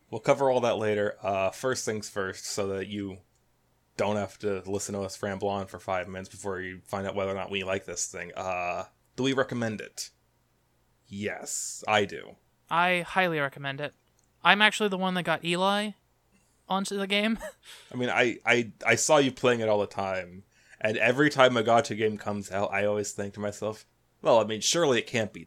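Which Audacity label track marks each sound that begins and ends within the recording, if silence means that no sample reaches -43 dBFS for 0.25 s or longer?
3.990000	8.860000	sound
9.180000	10.080000	sound
11.110000	12.330000	sound
12.690000	13.890000	sound
14.440000	15.920000	sound
16.690000	20.400000	sound
20.730000	23.820000	sound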